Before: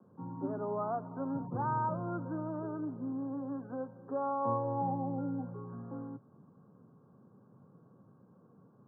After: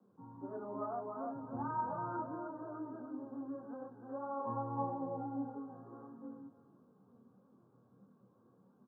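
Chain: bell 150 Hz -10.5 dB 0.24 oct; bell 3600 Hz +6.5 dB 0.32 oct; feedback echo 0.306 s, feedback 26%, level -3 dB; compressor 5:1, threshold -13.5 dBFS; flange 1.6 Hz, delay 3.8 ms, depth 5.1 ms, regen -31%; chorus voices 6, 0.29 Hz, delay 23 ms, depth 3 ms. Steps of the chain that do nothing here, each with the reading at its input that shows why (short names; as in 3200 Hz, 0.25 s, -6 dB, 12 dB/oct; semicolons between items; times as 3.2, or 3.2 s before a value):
bell 3600 Hz: input band ends at 1400 Hz; compressor, threshold -13.5 dBFS: input peak -20.0 dBFS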